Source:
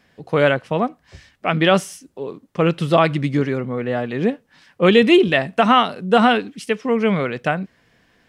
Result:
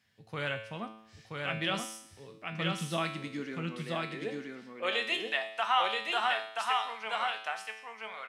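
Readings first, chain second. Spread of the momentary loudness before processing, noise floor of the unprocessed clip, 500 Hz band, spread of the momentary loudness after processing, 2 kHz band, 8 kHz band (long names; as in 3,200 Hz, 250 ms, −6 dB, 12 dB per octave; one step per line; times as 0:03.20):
13 LU, −61 dBFS, −20.5 dB, 13 LU, −10.5 dB, can't be measured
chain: guitar amp tone stack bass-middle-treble 5-5-5
high-pass filter sweep 93 Hz → 800 Hz, 0:01.86–0:05.36
tuned comb filter 110 Hz, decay 0.75 s, harmonics all, mix 80%
on a send: single-tap delay 978 ms −3 dB
on the sum: level +7.5 dB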